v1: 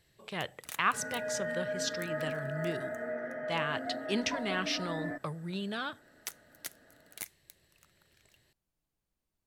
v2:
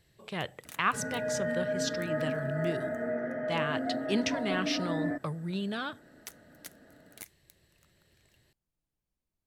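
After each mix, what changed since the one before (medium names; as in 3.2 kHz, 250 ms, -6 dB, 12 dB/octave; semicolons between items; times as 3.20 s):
first sound -5.0 dB; second sound: add bass shelf 470 Hz +6.5 dB; master: add bass shelf 410 Hz +4.5 dB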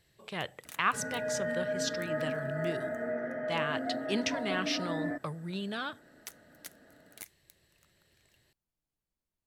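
master: add bass shelf 410 Hz -4.5 dB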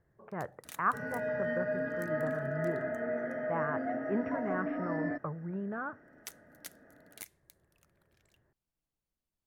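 speech: add steep low-pass 1.6 kHz 36 dB/octave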